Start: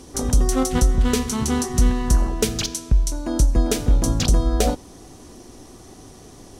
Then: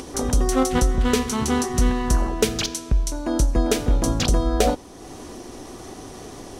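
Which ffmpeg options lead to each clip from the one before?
-af "bass=f=250:g=-6,treble=f=4000:g=-5,acompressor=mode=upward:threshold=0.0224:ratio=2.5,volume=1.41"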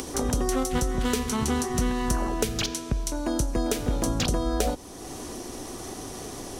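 -filter_complex "[0:a]crystalizer=i=1:c=0,acrossover=split=130|3800[s0][s1][s2];[s0]acompressor=threshold=0.0447:ratio=4[s3];[s1]acompressor=threshold=0.0562:ratio=4[s4];[s2]acompressor=threshold=0.0224:ratio=4[s5];[s3][s4][s5]amix=inputs=3:normalize=0"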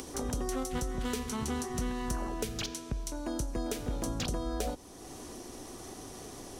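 -af "asoftclip=type=tanh:threshold=0.266,volume=0.398"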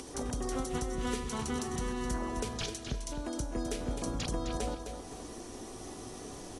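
-af "aecho=1:1:259|518|777|1036:0.422|0.135|0.0432|0.0138,volume=0.794" -ar 24000 -c:a aac -b:a 32k

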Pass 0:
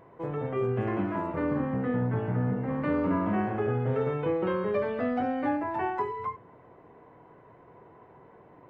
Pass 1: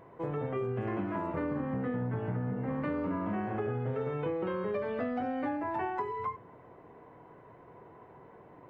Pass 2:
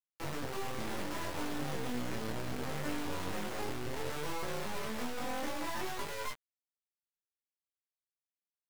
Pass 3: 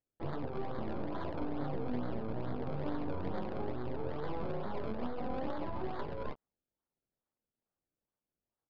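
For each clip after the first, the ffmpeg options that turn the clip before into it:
-af "acompressor=threshold=0.0316:ratio=6"
-filter_complex "[0:a]acrusher=bits=3:dc=4:mix=0:aa=0.000001,flanger=delay=19.5:depth=7.5:speed=0.66,asplit=2[s0][s1];[s1]adelay=13,volume=0.422[s2];[s0][s2]amix=inputs=2:normalize=0"
-filter_complex "[0:a]acrossover=split=1100[s0][s1];[s1]acrusher=samples=32:mix=1:aa=0.000001:lfo=1:lforange=32:lforate=2.3[s2];[s0][s2]amix=inputs=2:normalize=0,aresample=11025,aresample=44100,adynamicsmooth=sensitivity=4:basefreq=3300,volume=1.12"

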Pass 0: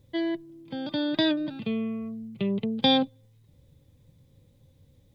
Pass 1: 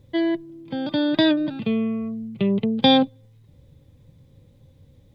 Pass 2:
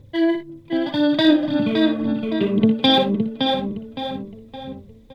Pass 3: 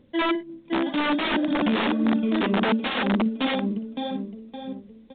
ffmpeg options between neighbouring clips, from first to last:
-af "highshelf=f=4400:g=-7.5,volume=2.11"
-filter_complex "[0:a]asplit=2[s0][s1];[s1]adelay=565,lowpass=f=4000:p=1,volume=0.596,asplit=2[s2][s3];[s3]adelay=565,lowpass=f=4000:p=1,volume=0.44,asplit=2[s4][s5];[s5]adelay=565,lowpass=f=4000:p=1,volume=0.44,asplit=2[s6][s7];[s7]adelay=565,lowpass=f=4000:p=1,volume=0.44,asplit=2[s8][s9];[s9]adelay=565,lowpass=f=4000:p=1,volume=0.44[s10];[s2][s4][s6][s8][s10]amix=inputs=5:normalize=0[s11];[s0][s11]amix=inputs=2:normalize=0,aphaser=in_gain=1:out_gain=1:delay=3.1:decay=0.53:speed=1.9:type=sinusoidal,asplit=2[s12][s13];[s13]aecho=0:1:59|79:0.376|0.141[s14];[s12][s14]amix=inputs=2:normalize=0"
-af "aeval=exprs='(mod(5.01*val(0)+1,2)-1)/5.01':c=same,lowshelf=f=160:t=q:w=3:g=-9.5,volume=0.596" -ar 8000 -c:a pcm_alaw

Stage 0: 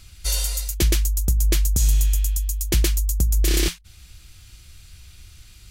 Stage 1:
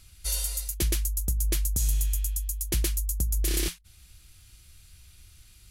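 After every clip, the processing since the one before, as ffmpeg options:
-af "equalizer=f=11000:t=o:w=0.56:g=8,volume=0.398"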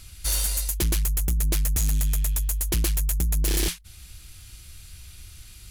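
-af "asoftclip=type=tanh:threshold=0.0398,volume=2.66"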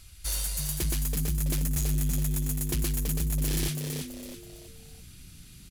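-filter_complex "[0:a]asplit=5[s0][s1][s2][s3][s4];[s1]adelay=329,afreqshift=100,volume=0.531[s5];[s2]adelay=658,afreqshift=200,volume=0.197[s6];[s3]adelay=987,afreqshift=300,volume=0.0724[s7];[s4]adelay=1316,afreqshift=400,volume=0.0269[s8];[s0][s5][s6][s7][s8]amix=inputs=5:normalize=0,volume=0.501"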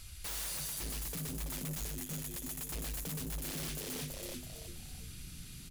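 -af "alimiter=level_in=1.19:limit=0.0631:level=0:latency=1:release=173,volume=0.841,bandreject=f=50:t=h:w=6,bandreject=f=100:t=h:w=6,bandreject=f=150:t=h:w=6,bandreject=f=200:t=h:w=6,bandreject=f=250:t=h:w=6,bandreject=f=300:t=h:w=6,bandreject=f=350:t=h:w=6,bandreject=f=400:t=h:w=6,bandreject=f=450:t=h:w=6,aeval=exprs='0.0158*(abs(mod(val(0)/0.0158+3,4)-2)-1)':c=same,volume=1.19"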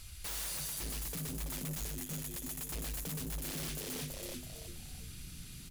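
-af "acrusher=bits=10:mix=0:aa=0.000001"

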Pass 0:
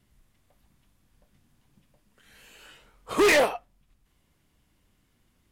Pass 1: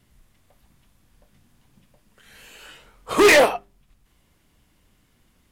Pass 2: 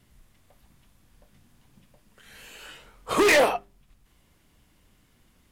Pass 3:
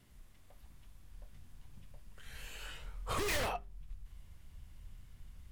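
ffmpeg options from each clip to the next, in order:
-af "bandreject=f=50:t=h:w=6,bandreject=f=100:t=h:w=6,bandreject=f=150:t=h:w=6,bandreject=f=200:t=h:w=6,bandreject=f=250:t=h:w=6,bandreject=f=300:t=h:w=6,bandreject=f=350:t=h:w=6,bandreject=f=400:t=h:w=6,volume=2.11"
-af "alimiter=limit=0.211:level=0:latency=1:release=29"
-af "aeval=exprs='0.106*(abs(mod(val(0)/0.106+3,4)-2)-1)':c=same,acompressor=threshold=0.01:ratio=1.5,asubboost=boost=9.5:cutoff=96,volume=0.668"

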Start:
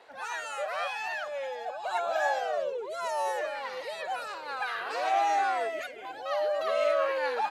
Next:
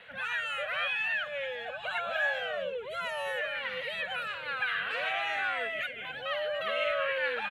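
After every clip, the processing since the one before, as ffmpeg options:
-filter_complex "[0:a]firequalizer=gain_entry='entry(190,0);entry(340,-27);entry(500,-12);entry(820,-23);entry(1500,-6);entry(3100,-2);entry(5000,-26);entry(11000,-16)':delay=0.05:min_phase=1,asplit=2[s0][s1];[s1]acompressor=threshold=0.00355:ratio=6,volume=1.26[s2];[s0][s2]amix=inputs=2:normalize=0,volume=2.24"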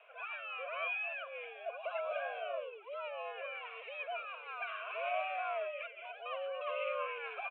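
-filter_complex "[0:a]asplit=3[s0][s1][s2];[s0]bandpass=f=730:t=q:w=8,volume=1[s3];[s1]bandpass=f=1090:t=q:w=8,volume=0.501[s4];[s2]bandpass=f=2440:t=q:w=8,volume=0.355[s5];[s3][s4][s5]amix=inputs=3:normalize=0,highpass=f=600:t=q:w=0.5412,highpass=f=600:t=q:w=1.307,lowpass=f=3400:t=q:w=0.5176,lowpass=f=3400:t=q:w=0.7071,lowpass=f=3400:t=q:w=1.932,afreqshift=-56,volume=1.78"

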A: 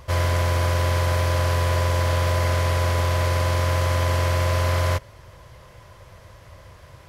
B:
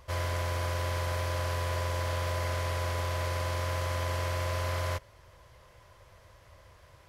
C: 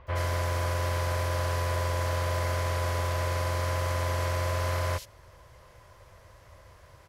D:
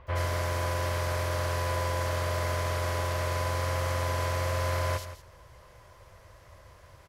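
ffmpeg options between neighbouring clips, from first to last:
-af "equalizer=f=160:w=0.76:g=-5.5,volume=0.376"
-filter_complex "[0:a]acrossover=split=3200[s0][s1];[s1]adelay=70[s2];[s0][s2]amix=inputs=2:normalize=0,volume=1.41"
-af "aecho=1:1:167:0.237"

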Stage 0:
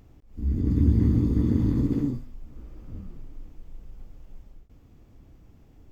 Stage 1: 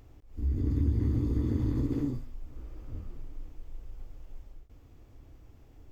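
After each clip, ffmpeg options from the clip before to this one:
-af "equalizer=f=190:w=2.7:g=-12.5,acompressor=threshold=0.0447:ratio=2"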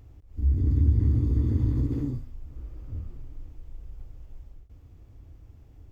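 -af "equalizer=f=78:t=o:w=2.3:g=9.5,volume=0.75"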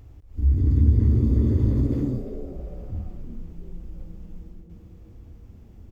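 -filter_complex "[0:a]asplit=4[s0][s1][s2][s3];[s1]adelay=345,afreqshift=150,volume=0.224[s4];[s2]adelay=690,afreqshift=300,volume=0.0759[s5];[s3]adelay=1035,afreqshift=450,volume=0.026[s6];[s0][s4][s5][s6]amix=inputs=4:normalize=0,volume=1.5"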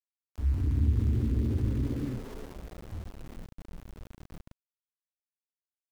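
-filter_complex "[0:a]acrossover=split=890[s0][s1];[s1]adelay=220[s2];[s0][s2]amix=inputs=2:normalize=0,aeval=exprs='val(0)*gte(abs(val(0)),0.0211)':c=same,volume=0.398"

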